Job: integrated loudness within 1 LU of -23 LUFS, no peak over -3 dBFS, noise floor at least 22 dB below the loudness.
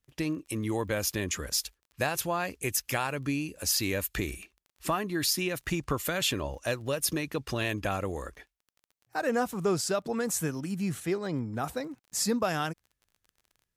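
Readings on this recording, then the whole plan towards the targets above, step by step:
tick rate 25 per s; loudness -30.5 LUFS; peak level -13.5 dBFS; loudness target -23.0 LUFS
-> de-click; trim +7.5 dB

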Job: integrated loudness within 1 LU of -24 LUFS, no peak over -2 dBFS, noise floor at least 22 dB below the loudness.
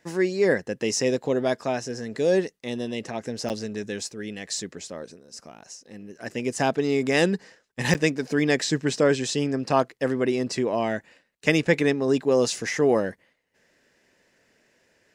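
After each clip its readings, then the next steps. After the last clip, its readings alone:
dropouts 2; longest dropout 9.0 ms; loudness -25.0 LUFS; peak level -4.0 dBFS; loudness target -24.0 LUFS
-> interpolate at 3.49/7.94 s, 9 ms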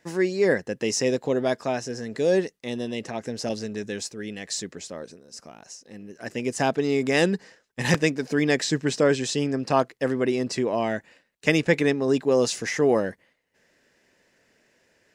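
dropouts 0; loudness -25.0 LUFS; peak level -4.0 dBFS; loudness target -24.0 LUFS
-> trim +1 dB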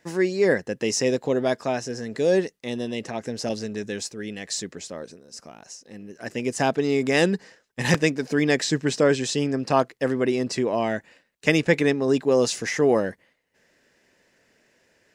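loudness -24.0 LUFS; peak level -3.0 dBFS; noise floor -68 dBFS

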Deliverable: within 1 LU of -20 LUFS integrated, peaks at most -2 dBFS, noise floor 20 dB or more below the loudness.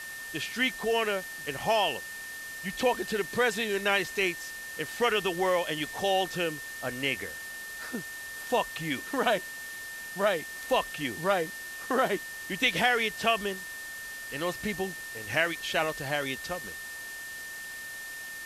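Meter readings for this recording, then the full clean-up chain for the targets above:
steady tone 1.8 kHz; tone level -39 dBFS; noise floor -41 dBFS; noise floor target -50 dBFS; loudness -30.0 LUFS; peak level -10.5 dBFS; loudness target -20.0 LUFS
-> band-stop 1.8 kHz, Q 30; noise reduction 9 dB, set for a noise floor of -41 dBFS; trim +10 dB; peak limiter -2 dBFS

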